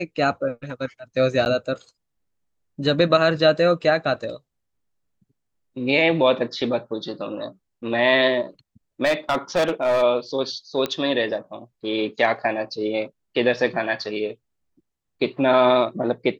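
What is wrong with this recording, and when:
0:01.45–0:01.46: drop-out 9.8 ms
0:09.04–0:10.03: clipping −15.5 dBFS
0:10.86: click −11 dBFS

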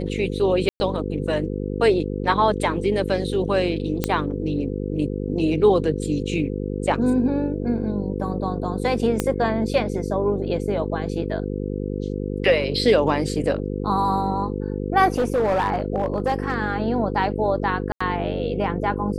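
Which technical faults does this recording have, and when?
mains buzz 50 Hz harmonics 10 −27 dBFS
0:00.69–0:00.80: drop-out 110 ms
0:04.04: click −6 dBFS
0:09.20: click −7 dBFS
0:15.14–0:16.56: clipping −16.5 dBFS
0:17.92–0:18.00: drop-out 85 ms

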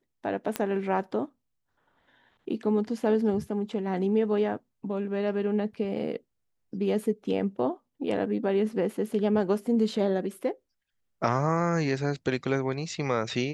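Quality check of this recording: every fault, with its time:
0:00.56: click −12 dBFS

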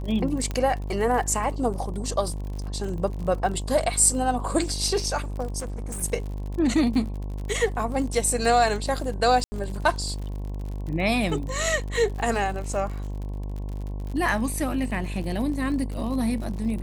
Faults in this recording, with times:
mains buzz 50 Hz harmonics 22 −31 dBFS
surface crackle 53 per second −33 dBFS
0:00.51: click −16 dBFS
0:05.59–0:06.03: clipping −29 dBFS
0:09.44–0:09.52: drop-out 80 ms

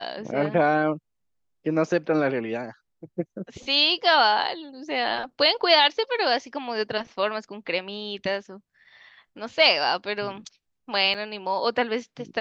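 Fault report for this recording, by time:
0:11.14–0:11.15: drop-out 6 ms

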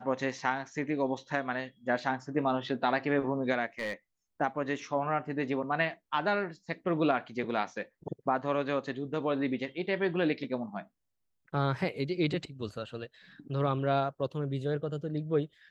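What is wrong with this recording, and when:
0:03.79–0:03.93: clipping −29 dBFS

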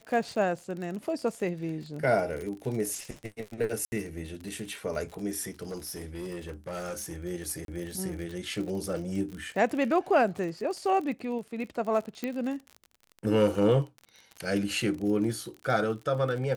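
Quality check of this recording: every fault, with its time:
surface crackle 43 per second −35 dBFS
0:00.56: drop-out 2.8 ms
0:03.85–0:03.92: drop-out 70 ms
0:05.70–0:07.16: clipping −32 dBFS
0:07.65–0:07.68: drop-out 32 ms
0:12.24: click −18 dBFS

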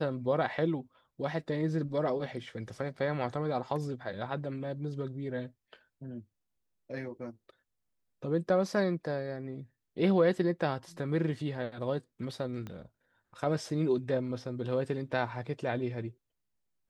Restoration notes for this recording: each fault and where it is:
0:12.67: click −28 dBFS

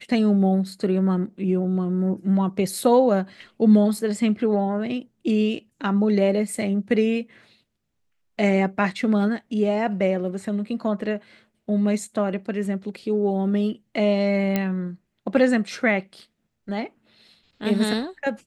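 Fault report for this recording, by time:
0:14.56: click −9 dBFS

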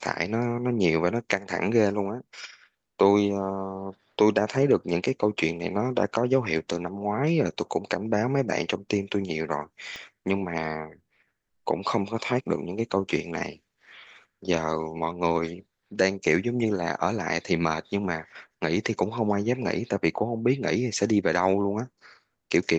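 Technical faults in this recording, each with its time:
0:09.96: click −23 dBFS

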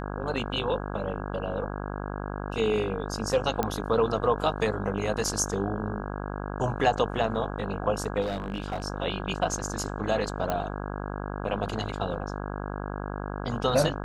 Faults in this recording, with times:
mains buzz 50 Hz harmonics 33 −34 dBFS
0:03.63: click −12 dBFS
0:08.21–0:08.84: clipping −26 dBFS
0:10.50: click −14 dBFS

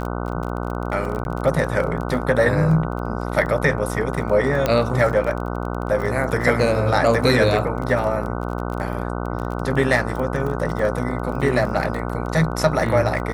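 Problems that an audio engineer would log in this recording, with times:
mains buzz 60 Hz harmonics 25 −26 dBFS
surface crackle 25 per second −27 dBFS
0:01.24–0:01.25: drop-out 11 ms
0:04.66: click −6 dBFS

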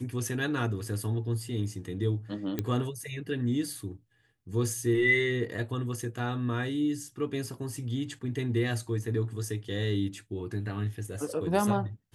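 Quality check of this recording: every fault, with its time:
0:02.59: click −16 dBFS

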